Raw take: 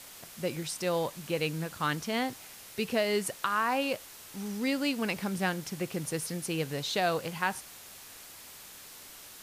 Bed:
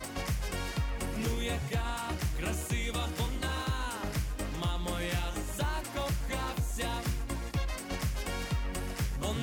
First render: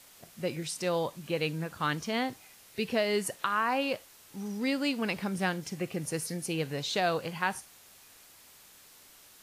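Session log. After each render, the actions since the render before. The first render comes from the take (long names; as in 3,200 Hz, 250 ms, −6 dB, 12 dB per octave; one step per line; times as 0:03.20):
noise reduction from a noise print 7 dB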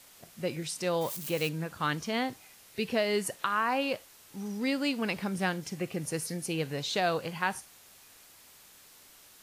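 0:01.01–0:01.49: spike at every zero crossing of −31.5 dBFS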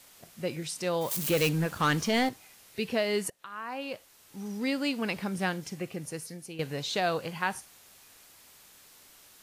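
0:01.11–0:02.29: leveller curve on the samples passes 2
0:03.30–0:04.55: fade in, from −23.5 dB
0:05.57–0:06.59: fade out, to −11 dB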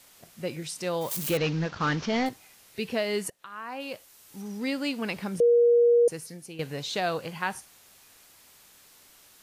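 0:01.37–0:02.26: variable-slope delta modulation 32 kbit/s
0:03.80–0:04.42: high-shelf EQ 5,500 Hz +6 dB
0:05.40–0:06.08: beep over 475 Hz −16 dBFS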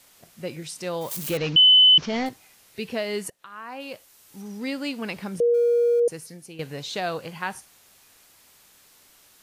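0:01.56–0:01.98: beep over 3,020 Hz −10.5 dBFS
0:05.54–0:06.00: mu-law and A-law mismatch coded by A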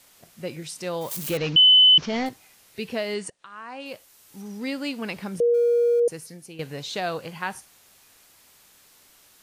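0:03.14–0:03.86: elliptic low-pass filter 9,300 Hz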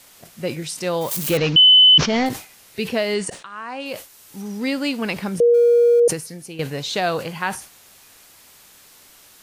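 in parallel at +1.5 dB: brickwall limiter −18 dBFS, peak gain reduction 7.5 dB
on the sum: level that may fall only so fast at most 140 dB per second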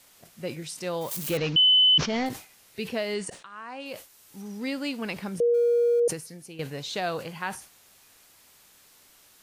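level −8 dB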